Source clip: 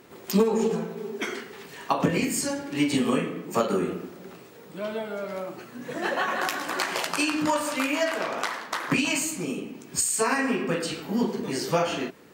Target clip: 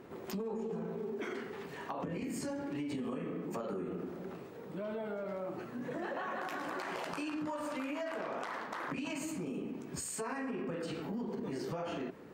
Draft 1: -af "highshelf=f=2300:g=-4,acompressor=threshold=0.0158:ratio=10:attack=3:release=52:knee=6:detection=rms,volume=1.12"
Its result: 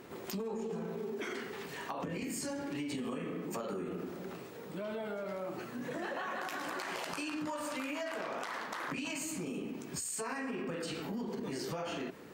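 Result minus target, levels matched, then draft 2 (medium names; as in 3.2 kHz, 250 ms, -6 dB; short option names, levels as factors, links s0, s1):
4 kHz band +4.5 dB
-af "highshelf=f=2300:g=-14.5,acompressor=threshold=0.0158:ratio=10:attack=3:release=52:knee=6:detection=rms,volume=1.12"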